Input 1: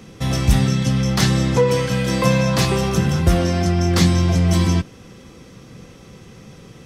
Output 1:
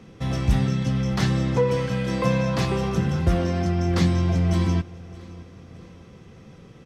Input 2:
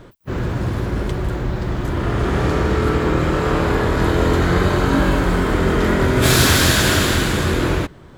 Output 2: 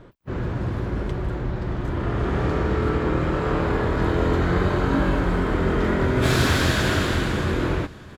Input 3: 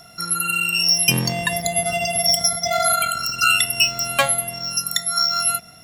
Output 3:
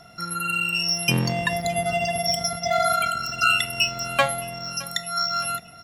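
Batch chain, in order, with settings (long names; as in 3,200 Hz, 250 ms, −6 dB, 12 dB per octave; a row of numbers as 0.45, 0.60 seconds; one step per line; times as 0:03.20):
low-pass filter 2,700 Hz 6 dB per octave
repeating echo 616 ms, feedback 46%, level −21.5 dB
loudness normalisation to −23 LKFS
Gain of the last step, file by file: −5.0, −4.5, 0.0 decibels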